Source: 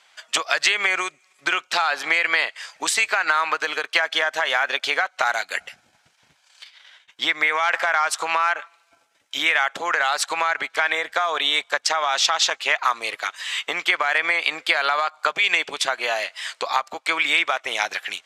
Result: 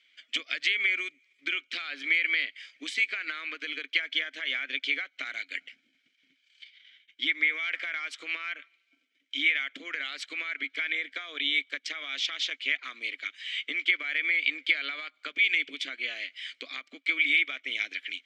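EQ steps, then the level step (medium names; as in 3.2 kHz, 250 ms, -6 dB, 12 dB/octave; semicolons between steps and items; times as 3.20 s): vowel filter i; tone controls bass -8 dB, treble +7 dB; treble shelf 6.6 kHz -10 dB; +4.5 dB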